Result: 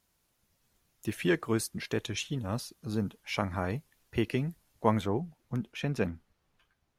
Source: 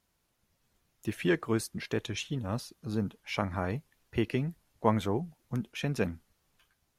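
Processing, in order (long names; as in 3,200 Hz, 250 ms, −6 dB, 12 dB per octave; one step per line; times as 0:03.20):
high-shelf EQ 5,000 Hz +4.5 dB, from 0:05.01 −6 dB, from 0:06.10 −12 dB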